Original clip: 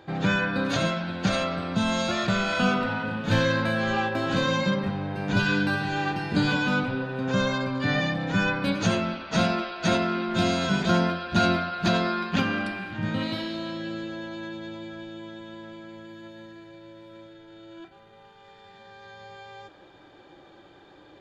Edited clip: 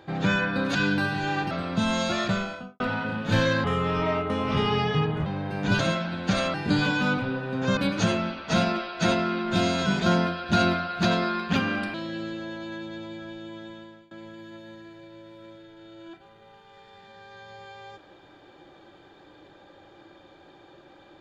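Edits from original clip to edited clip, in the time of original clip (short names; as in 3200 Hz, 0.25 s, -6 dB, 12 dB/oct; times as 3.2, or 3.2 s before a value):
0.75–1.5 swap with 5.44–6.2
2.19–2.79 studio fade out
3.63–4.91 speed 79%
7.43–8.6 cut
12.77–13.65 cut
15.42–15.82 fade out, to -22.5 dB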